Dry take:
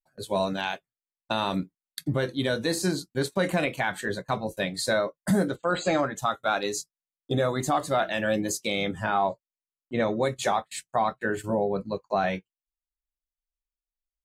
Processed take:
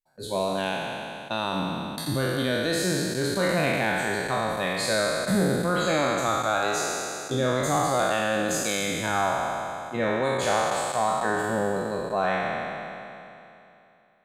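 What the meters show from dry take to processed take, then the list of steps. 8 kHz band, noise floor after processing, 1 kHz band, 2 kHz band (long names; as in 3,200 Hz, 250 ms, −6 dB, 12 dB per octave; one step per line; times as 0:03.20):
+5.0 dB, −54 dBFS, +2.5 dB, +3.5 dB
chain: peak hold with a decay on every bin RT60 2.84 s
level −3.5 dB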